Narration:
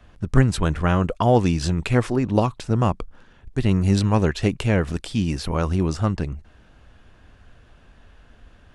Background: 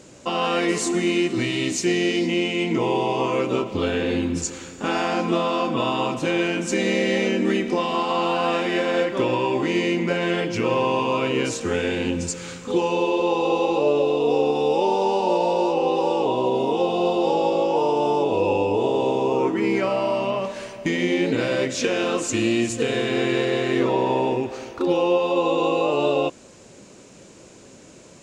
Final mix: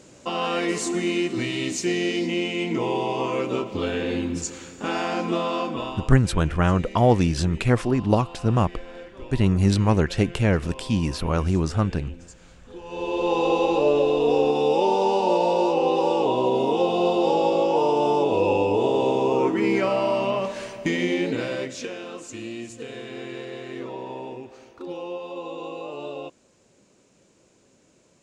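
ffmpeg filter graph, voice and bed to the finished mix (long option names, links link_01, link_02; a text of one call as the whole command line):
ffmpeg -i stem1.wav -i stem2.wav -filter_complex "[0:a]adelay=5750,volume=-0.5dB[link_01];[1:a]volume=16.5dB,afade=type=out:start_time=5.58:duration=0.54:silence=0.149624,afade=type=in:start_time=12.84:duration=0.54:silence=0.105925,afade=type=out:start_time=20.76:duration=1.25:silence=0.211349[link_02];[link_01][link_02]amix=inputs=2:normalize=0" out.wav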